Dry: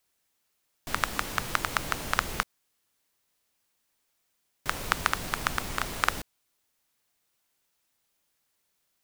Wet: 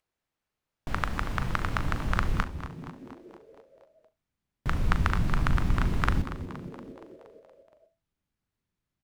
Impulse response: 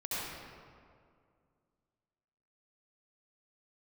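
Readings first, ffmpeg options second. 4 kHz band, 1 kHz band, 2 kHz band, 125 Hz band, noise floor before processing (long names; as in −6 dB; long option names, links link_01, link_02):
−7.5 dB, −2.0 dB, −3.0 dB, +13.0 dB, −76 dBFS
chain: -filter_complex "[0:a]asubboost=boost=5.5:cutoff=230,lowpass=frequency=1400:poles=1,asplit=2[link_01][link_02];[link_02]adelay=39,volume=-12dB[link_03];[link_01][link_03]amix=inputs=2:normalize=0,acompressor=mode=upward:threshold=-35dB:ratio=2.5,agate=range=-31dB:threshold=-46dB:ratio=16:detection=peak,asplit=8[link_04][link_05][link_06][link_07][link_08][link_09][link_10][link_11];[link_05]adelay=235,afreqshift=-95,volume=-13dB[link_12];[link_06]adelay=470,afreqshift=-190,volume=-17.2dB[link_13];[link_07]adelay=705,afreqshift=-285,volume=-21.3dB[link_14];[link_08]adelay=940,afreqshift=-380,volume=-25.5dB[link_15];[link_09]adelay=1175,afreqshift=-475,volume=-29.6dB[link_16];[link_10]adelay=1410,afreqshift=-570,volume=-33.8dB[link_17];[link_11]adelay=1645,afreqshift=-665,volume=-37.9dB[link_18];[link_04][link_12][link_13][link_14][link_15][link_16][link_17][link_18]amix=inputs=8:normalize=0,asplit=2[link_19][link_20];[1:a]atrim=start_sample=2205,atrim=end_sample=3528[link_21];[link_20][link_21]afir=irnorm=-1:irlink=0,volume=-14dB[link_22];[link_19][link_22]amix=inputs=2:normalize=0"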